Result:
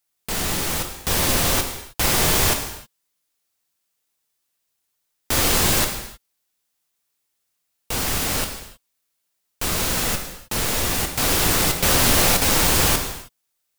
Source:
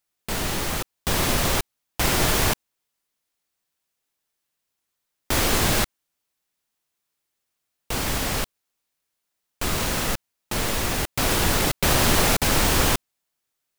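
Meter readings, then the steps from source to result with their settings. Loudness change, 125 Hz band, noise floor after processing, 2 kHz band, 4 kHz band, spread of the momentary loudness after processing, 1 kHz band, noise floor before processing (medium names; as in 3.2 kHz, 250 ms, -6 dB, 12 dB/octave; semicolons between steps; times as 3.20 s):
+3.5 dB, +0.5 dB, -75 dBFS, +1.5 dB, +3.0 dB, 13 LU, +1.0 dB, -80 dBFS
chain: treble shelf 4.1 kHz +5.5 dB; gated-style reverb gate 340 ms falling, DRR 3.5 dB; trim -1 dB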